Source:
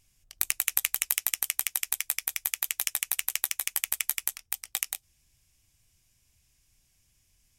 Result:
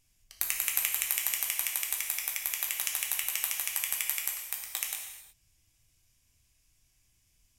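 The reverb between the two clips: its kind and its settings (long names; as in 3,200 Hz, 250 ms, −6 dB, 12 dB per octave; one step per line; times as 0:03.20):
reverb whose tail is shaped and stops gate 390 ms falling, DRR −0.5 dB
level −4.5 dB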